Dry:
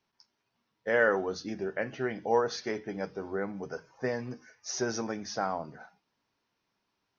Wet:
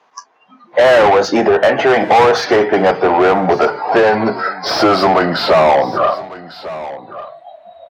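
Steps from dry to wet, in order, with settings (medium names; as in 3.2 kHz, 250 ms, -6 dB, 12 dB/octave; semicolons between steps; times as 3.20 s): gliding tape speed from 113% -> 69%; peaking EQ 740 Hz +12.5 dB 1.3 oct; hum notches 60/120 Hz; in parallel at +1 dB: compression, threshold -33 dBFS, peak gain reduction 19.5 dB; on the sum: spectral noise reduction 22 dB; overdrive pedal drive 30 dB, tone 2.9 kHz, clips at -4 dBFS; high-pass 74 Hz; treble shelf 4.9 kHz -7.5 dB; on a send: delay 1149 ms -22.5 dB; on the sum: three bands compressed up and down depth 40%; trim +2.5 dB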